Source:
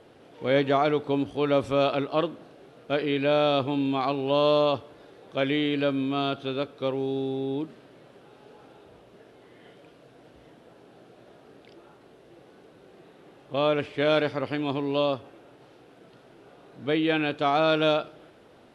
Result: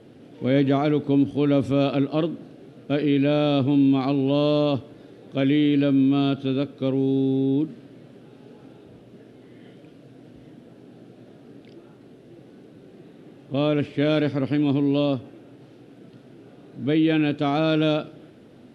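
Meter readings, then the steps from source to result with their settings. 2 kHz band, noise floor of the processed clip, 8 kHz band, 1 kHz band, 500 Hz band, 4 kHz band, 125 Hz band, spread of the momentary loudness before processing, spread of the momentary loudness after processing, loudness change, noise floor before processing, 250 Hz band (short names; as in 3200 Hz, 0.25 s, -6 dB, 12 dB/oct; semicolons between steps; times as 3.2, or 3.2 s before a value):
-2.0 dB, -49 dBFS, n/a, -4.0 dB, 0.0 dB, -1.0 dB, +9.0 dB, 9 LU, 9 LU, +3.5 dB, -54 dBFS, +8.5 dB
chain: graphic EQ 125/250/1000 Hz +8/+10/-6 dB; in parallel at -2.5 dB: limiter -15 dBFS, peak gain reduction 8 dB; on the sum: gain -4.5 dB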